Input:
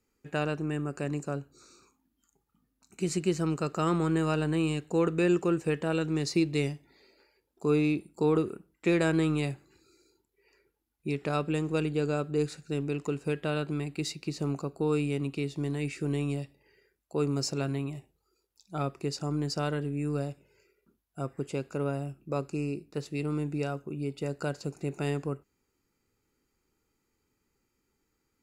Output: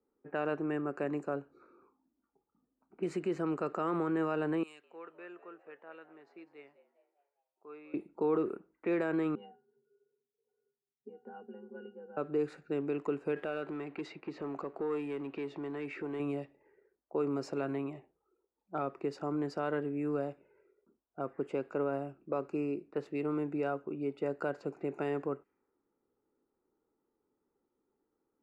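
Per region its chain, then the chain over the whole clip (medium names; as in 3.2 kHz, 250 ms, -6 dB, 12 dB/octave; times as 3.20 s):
4.63–7.94 s: differentiator + frequency-shifting echo 202 ms, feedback 53%, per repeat +94 Hz, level -15 dB
9.35–12.17 s: pitch-class resonator F, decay 0.2 s + frequency shift +54 Hz
13.36–16.20 s: compression 2:1, threshold -42 dBFS + bass shelf 270 Hz -7 dB + waveshaping leveller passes 2
whole clip: peak limiter -22 dBFS; three-band isolator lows -18 dB, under 250 Hz, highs -22 dB, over 2.2 kHz; level-controlled noise filter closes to 860 Hz, open at -34.5 dBFS; trim +2 dB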